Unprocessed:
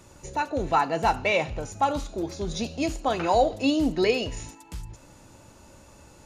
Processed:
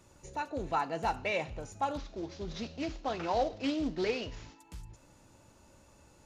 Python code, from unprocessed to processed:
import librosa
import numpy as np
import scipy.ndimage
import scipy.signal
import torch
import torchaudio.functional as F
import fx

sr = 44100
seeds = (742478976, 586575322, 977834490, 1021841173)

y = fx.cvsd(x, sr, bps=32000, at=(1.97, 4.59))
y = fx.doppler_dist(y, sr, depth_ms=0.18)
y = y * librosa.db_to_amplitude(-9.0)